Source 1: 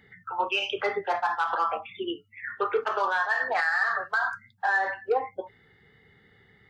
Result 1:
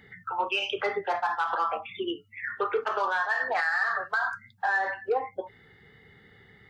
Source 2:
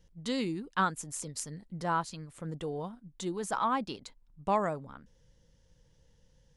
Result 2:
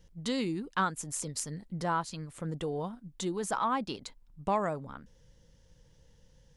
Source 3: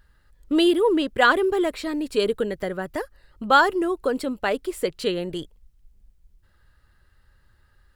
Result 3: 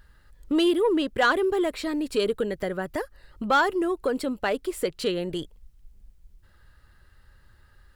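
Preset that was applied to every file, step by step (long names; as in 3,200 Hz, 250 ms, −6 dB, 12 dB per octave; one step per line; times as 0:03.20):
in parallel at +2 dB: downward compressor, threshold −35 dBFS
on the sum: soft clipping −8.5 dBFS
level −3.5 dB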